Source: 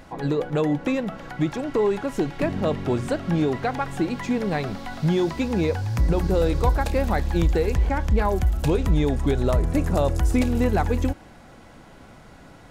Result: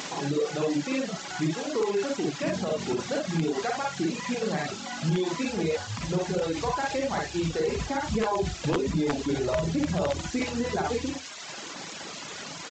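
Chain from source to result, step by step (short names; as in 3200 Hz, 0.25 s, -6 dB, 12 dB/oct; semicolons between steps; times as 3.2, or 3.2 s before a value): high shelf 4400 Hz +2.5 dB; bit-crush 7-bit; echo 87 ms -16 dB; upward compressor, threshold -25 dBFS; 7.59–10.22 low shelf 490 Hz +5 dB; Schroeder reverb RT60 0.33 s, DRR -2.5 dB; added noise white -28 dBFS; HPF 160 Hz 12 dB/oct; wrapped overs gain 6 dB; limiter -10.5 dBFS, peak gain reduction 4.5 dB; reverb removal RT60 1.1 s; gain -5.5 dB; G.722 64 kbps 16000 Hz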